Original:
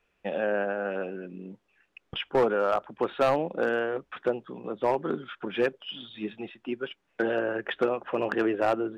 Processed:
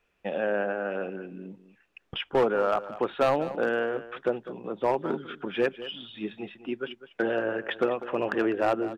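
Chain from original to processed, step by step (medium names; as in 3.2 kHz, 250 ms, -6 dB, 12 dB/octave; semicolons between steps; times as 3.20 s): delay 201 ms -14.5 dB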